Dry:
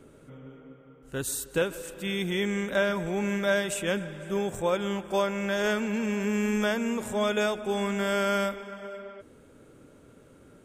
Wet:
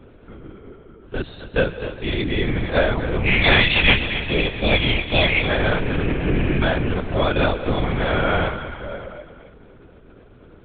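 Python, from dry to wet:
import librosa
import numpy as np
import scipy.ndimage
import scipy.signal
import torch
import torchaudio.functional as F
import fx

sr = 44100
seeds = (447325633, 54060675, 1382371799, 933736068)

y = fx.high_shelf_res(x, sr, hz=1700.0, db=10.0, q=3.0, at=(3.25, 5.4), fade=0.02)
y = fx.echo_feedback(y, sr, ms=259, feedback_pct=44, wet_db=-11.5)
y = fx.lpc_vocoder(y, sr, seeds[0], excitation='whisper', order=8)
y = F.gain(torch.from_numpy(y), 7.0).numpy()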